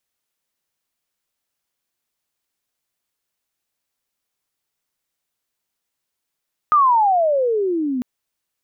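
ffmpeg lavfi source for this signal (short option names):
-f lavfi -i "aevalsrc='pow(10,(-10-9.5*t/1.3)/20)*sin(2*PI*1250*1.3/(-28.5*log(2)/12)*(exp(-28.5*log(2)/12*t/1.3)-1))':d=1.3:s=44100"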